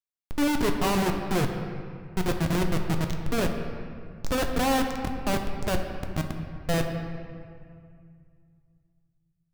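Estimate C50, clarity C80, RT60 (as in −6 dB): 5.5 dB, 6.5 dB, 2.2 s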